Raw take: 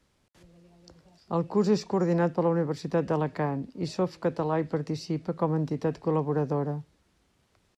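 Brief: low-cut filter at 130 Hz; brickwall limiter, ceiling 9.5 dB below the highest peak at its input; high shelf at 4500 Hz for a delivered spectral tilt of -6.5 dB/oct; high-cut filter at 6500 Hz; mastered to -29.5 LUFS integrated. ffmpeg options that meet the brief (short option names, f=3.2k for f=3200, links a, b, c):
-af "highpass=130,lowpass=6.5k,highshelf=f=4.5k:g=4.5,volume=4dB,alimiter=limit=-19.5dB:level=0:latency=1"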